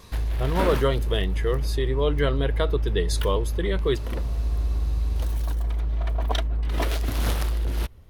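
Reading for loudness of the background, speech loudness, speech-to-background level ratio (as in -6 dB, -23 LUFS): -27.5 LUFS, -27.0 LUFS, 0.5 dB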